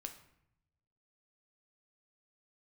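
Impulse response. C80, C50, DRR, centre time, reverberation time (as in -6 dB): 13.5 dB, 10.5 dB, 5.5 dB, 12 ms, 0.75 s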